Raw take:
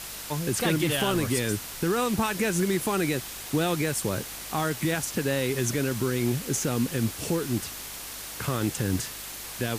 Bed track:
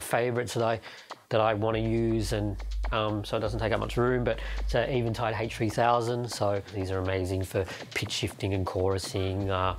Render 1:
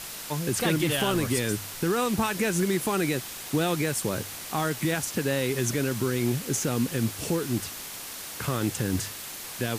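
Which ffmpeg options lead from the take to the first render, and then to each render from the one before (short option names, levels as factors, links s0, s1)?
-af "bandreject=f=50:t=h:w=4,bandreject=f=100:t=h:w=4"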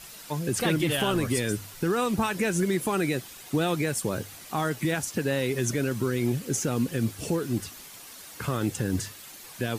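-af "afftdn=nr=9:nf=-39"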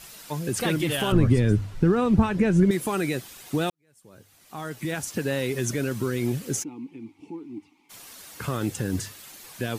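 -filter_complex "[0:a]asettb=1/sr,asplit=3[s0][s1][s2];[s0]atrim=end=1.124[s3];[s1]atrim=start=1.12:end=2.71,asetpts=PTS-STARTPTS,afade=t=in:d=0.004:c=qsin,afade=t=out:st=1.586:d=0.004:c=qsin,aemphasis=mode=reproduction:type=riaa[s4];[s2]atrim=start=2.706[s5];[s3][s4]acrossfade=d=0.004:c1=hsin:c2=qsin[s6];[s6][s5]acrossfade=d=0.004:c1=qsin:c2=hsin,asplit=3[s7][s8][s9];[s7]afade=t=out:st=6.62:d=0.02[s10];[s8]asplit=3[s11][s12][s13];[s11]bandpass=f=300:t=q:w=8,volume=1[s14];[s12]bandpass=f=870:t=q:w=8,volume=0.501[s15];[s13]bandpass=f=2240:t=q:w=8,volume=0.355[s16];[s14][s15][s16]amix=inputs=3:normalize=0,afade=t=in:st=6.62:d=0.02,afade=t=out:st=7.89:d=0.02[s17];[s9]afade=t=in:st=7.89:d=0.02[s18];[s10][s17][s18]amix=inputs=3:normalize=0,asplit=2[s19][s20];[s19]atrim=end=3.7,asetpts=PTS-STARTPTS,afade=t=out:st=3.696:d=0.004:c=hsin[s21];[s20]atrim=start=3.7,asetpts=PTS-STARTPTS,afade=t=in:d=1.41:c=qua[s22];[s21][s22]concat=n=2:v=0:a=1"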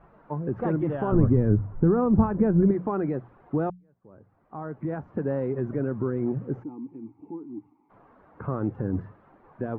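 -af "lowpass=f=1200:w=0.5412,lowpass=f=1200:w=1.3066,bandreject=f=60:t=h:w=6,bandreject=f=120:t=h:w=6,bandreject=f=180:t=h:w=6"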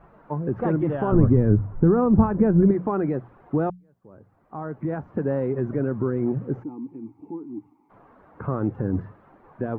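-af "volume=1.41"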